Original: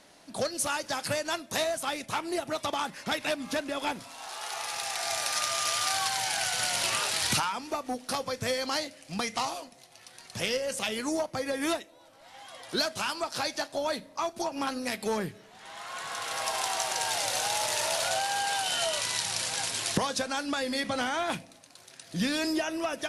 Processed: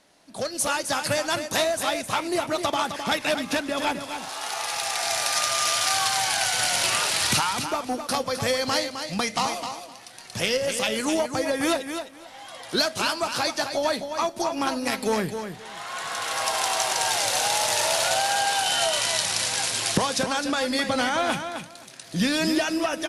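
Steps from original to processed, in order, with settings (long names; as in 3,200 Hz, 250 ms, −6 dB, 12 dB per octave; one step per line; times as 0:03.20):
automatic gain control gain up to 9.5 dB
repeating echo 260 ms, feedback 17%, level −8 dB
level −4 dB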